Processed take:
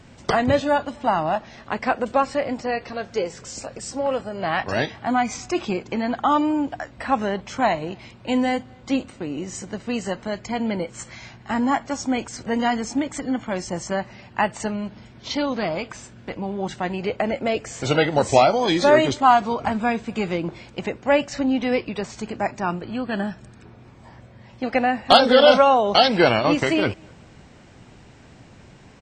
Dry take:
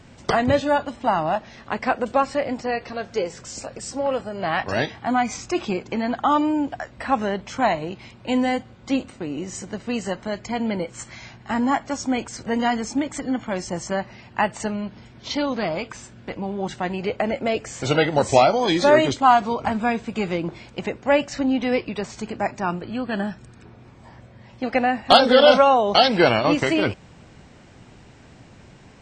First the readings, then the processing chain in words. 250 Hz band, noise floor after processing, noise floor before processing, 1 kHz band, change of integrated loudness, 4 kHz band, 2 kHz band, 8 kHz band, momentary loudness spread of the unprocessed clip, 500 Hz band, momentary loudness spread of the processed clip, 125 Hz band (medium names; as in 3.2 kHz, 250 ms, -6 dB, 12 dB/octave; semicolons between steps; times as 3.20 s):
0.0 dB, -48 dBFS, -48 dBFS, 0.0 dB, 0.0 dB, 0.0 dB, 0.0 dB, 0.0 dB, 15 LU, 0.0 dB, 15 LU, 0.0 dB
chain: echo from a far wall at 43 m, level -30 dB